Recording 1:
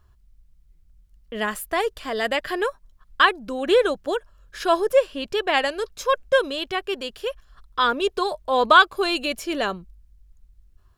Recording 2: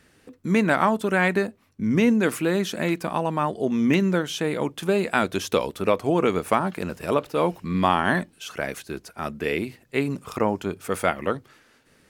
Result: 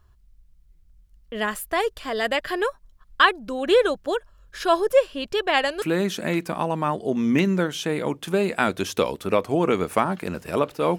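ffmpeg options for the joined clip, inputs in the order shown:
-filter_complex "[0:a]apad=whole_dur=10.98,atrim=end=10.98,atrim=end=5.822[s0];[1:a]atrim=start=2.368:end=7.53[s1];[s0][s1]acrossfade=d=0.004:c1=hsin:c2=hsin"

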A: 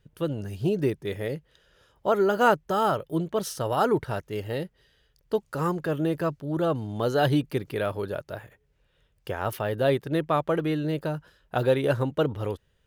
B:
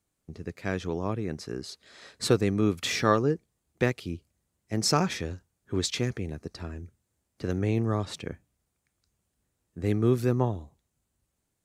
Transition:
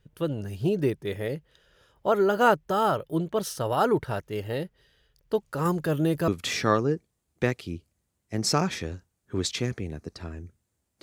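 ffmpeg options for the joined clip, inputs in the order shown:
-filter_complex "[0:a]asettb=1/sr,asplit=3[s0][s1][s2];[s0]atrim=end=5.654[s3];[s1]atrim=start=5.65:end=6.28,asetpts=PTS-STARTPTS,afade=t=in:d=0.004:c=qsin,afade=t=out:st=0.626:d=0.004:c=qsin,bass=f=250:g=4,treble=f=4000:g=7[s4];[s2]atrim=start=6.276[s5];[s3][s4]acrossfade=d=0.004:c1=hsin:c2=qsin[s6];[s6][s5]acrossfade=d=0.004:c1=qsin:c2=hsin,apad=whole_dur=11.02,atrim=end=11.02,atrim=end=6.282[s7];[1:a]atrim=start=2.668:end=7.41[s8];[s7][s8]acrossfade=d=0.004:c1=hsin:c2=hsin"

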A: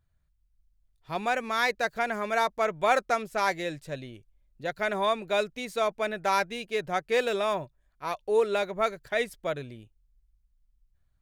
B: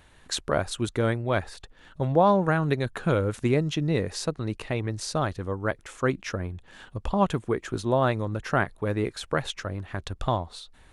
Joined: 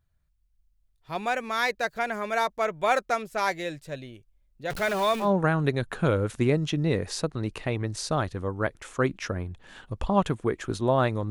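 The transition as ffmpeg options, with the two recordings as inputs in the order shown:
-filter_complex "[0:a]asettb=1/sr,asplit=3[s0][s1][s2];[s0]atrim=end=4.704[s3];[s1]atrim=start=4.7:end=5.31,asetpts=PTS-STARTPTS,afade=t=in:d=0.004:c=qsin,afade=t=out:st=0.606:d=0.004:c=qsin,aeval=exprs='val(0)+0.5*0.0316*sgn(val(0))':c=same[s4];[s2]atrim=start=5.306[s5];[s3][s4]acrossfade=d=0.004:c1=hsin:c2=qsin[s6];[s6][s5]acrossfade=d=0.004:c1=qsin:c2=hsin,apad=whole_dur=11.3,atrim=end=11.3,atrim=end=5.31,asetpts=PTS-STARTPTS[s7];[1:a]atrim=start=2.23:end=8.34,asetpts=PTS-STARTPTS[s8];[s7][s8]acrossfade=d=0.12:c1=tri:c2=tri"

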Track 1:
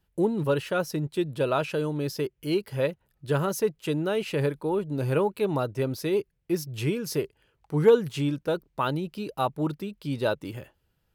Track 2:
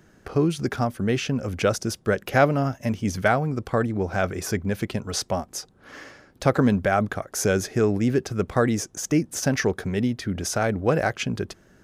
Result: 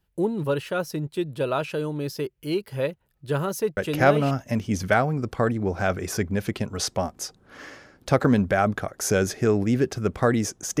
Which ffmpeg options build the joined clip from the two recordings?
-filter_complex "[0:a]apad=whole_dur=10.8,atrim=end=10.8,atrim=end=4.31,asetpts=PTS-STARTPTS[s0];[1:a]atrim=start=2.11:end=9.14,asetpts=PTS-STARTPTS[s1];[s0][s1]acrossfade=d=0.54:c1=log:c2=log"

